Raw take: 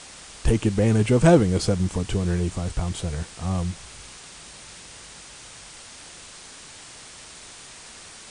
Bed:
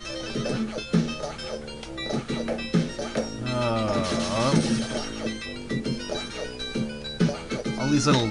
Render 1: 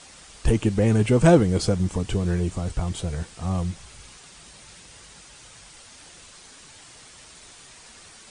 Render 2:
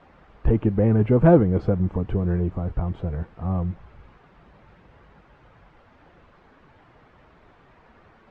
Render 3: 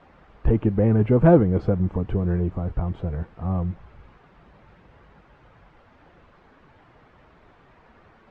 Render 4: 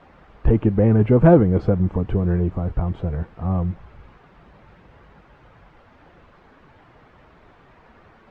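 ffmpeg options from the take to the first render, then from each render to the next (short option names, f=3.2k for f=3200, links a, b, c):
-af "afftdn=nr=6:nf=-44"
-af "lowpass=1.5k,aemphasis=mode=reproduction:type=75fm"
-af anull
-af "volume=3dB,alimiter=limit=-2dB:level=0:latency=1"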